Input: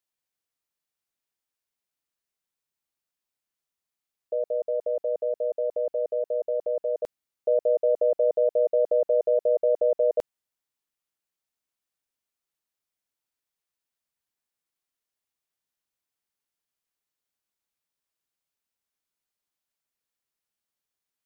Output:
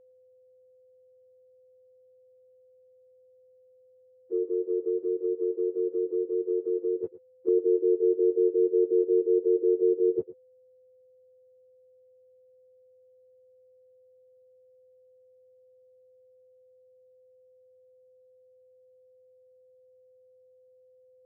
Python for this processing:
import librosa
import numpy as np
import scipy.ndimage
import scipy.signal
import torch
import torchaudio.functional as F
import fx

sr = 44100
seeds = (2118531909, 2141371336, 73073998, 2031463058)

y = fx.octave_mirror(x, sr, pivot_hz=470.0)
y = y + 10.0 ** (-56.0 / 20.0) * np.sin(2.0 * np.pi * 510.0 * np.arange(len(y)) / sr)
y = fx.env_lowpass_down(y, sr, base_hz=680.0, full_db=-24.0)
y = y + 10.0 ** (-17.0 / 20.0) * np.pad(y, (int(111 * sr / 1000.0), 0))[:len(y)]